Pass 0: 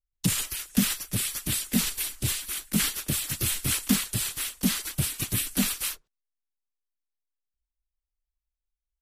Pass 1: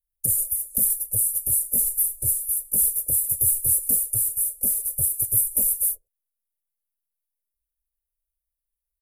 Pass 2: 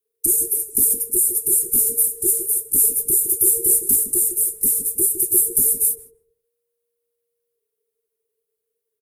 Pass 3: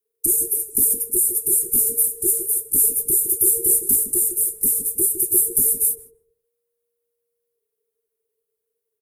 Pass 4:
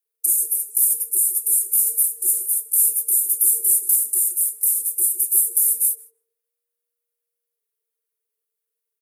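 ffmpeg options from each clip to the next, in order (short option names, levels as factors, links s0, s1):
-af "firequalizer=gain_entry='entry(110,0);entry(180,-18);entry(530,5);entry(960,-22);entry(1500,-25);entry(3500,-30);entry(9800,13)':delay=0.05:min_phase=1,volume=0.794"
-filter_complex "[0:a]asplit=2[s0][s1];[s1]adelay=156,lowpass=f=1200:p=1,volume=0.398,asplit=2[s2][s3];[s3]adelay=156,lowpass=f=1200:p=1,volume=0.27,asplit=2[s4][s5];[s5]adelay=156,lowpass=f=1200:p=1,volume=0.27[s6];[s0][s2][s4][s6]amix=inputs=4:normalize=0,aeval=exprs='0.501*(cos(1*acos(clip(val(0)/0.501,-1,1)))-cos(1*PI/2))+0.00282*(cos(2*acos(clip(val(0)/0.501,-1,1)))-cos(2*PI/2))+0.00794*(cos(5*acos(clip(val(0)/0.501,-1,1)))-cos(5*PI/2))':c=same,afreqshift=-470,volume=1.58"
-af "equalizer=f=3800:t=o:w=2.2:g=-3.5"
-af "highpass=1100"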